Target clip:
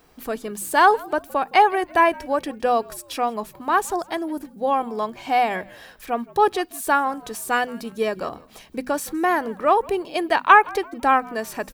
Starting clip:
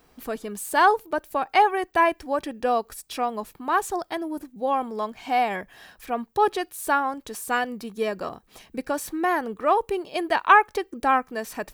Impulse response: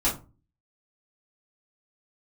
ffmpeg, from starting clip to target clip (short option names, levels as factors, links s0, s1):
-filter_complex "[0:a]bandreject=f=50:t=h:w=6,bandreject=f=100:t=h:w=6,bandreject=f=150:t=h:w=6,bandreject=f=200:t=h:w=6,bandreject=f=250:t=h:w=6,asplit=2[s0][s1];[s1]asplit=3[s2][s3][s4];[s2]adelay=165,afreqshift=-73,volume=0.0708[s5];[s3]adelay=330,afreqshift=-146,volume=0.0269[s6];[s4]adelay=495,afreqshift=-219,volume=0.0102[s7];[s5][s6][s7]amix=inputs=3:normalize=0[s8];[s0][s8]amix=inputs=2:normalize=0,volume=1.41"